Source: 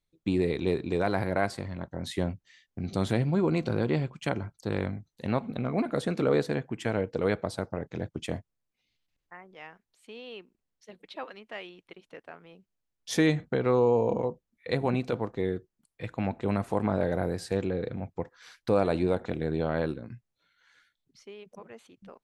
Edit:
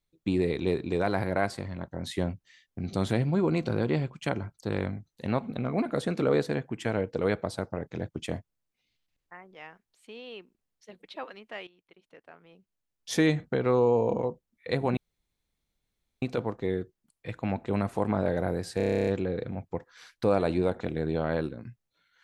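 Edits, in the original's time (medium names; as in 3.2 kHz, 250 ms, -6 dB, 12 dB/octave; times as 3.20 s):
11.67–13.14 s: fade in, from -15 dB
14.97 s: insert room tone 1.25 s
17.52 s: stutter 0.03 s, 11 plays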